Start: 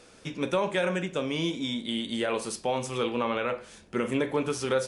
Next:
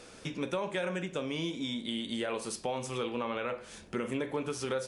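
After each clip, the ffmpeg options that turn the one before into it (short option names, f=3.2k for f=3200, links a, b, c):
-af "acompressor=threshold=-40dB:ratio=2,volume=2.5dB"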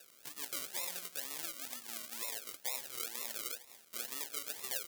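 -af "acrusher=samples=40:mix=1:aa=0.000001:lfo=1:lforange=24:lforate=2.1,aderivative,volume=4dB"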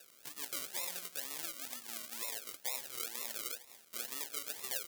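-af anull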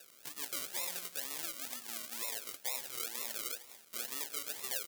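-filter_complex "[0:a]asplit=2[a][b];[b]volume=21.5dB,asoftclip=hard,volume=-21.5dB,volume=-4dB[c];[a][c]amix=inputs=2:normalize=0,aecho=1:1:185:0.0944,volume=-2.5dB"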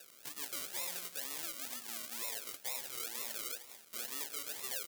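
-af "asoftclip=type=tanh:threshold=-20.5dB,volume=1dB"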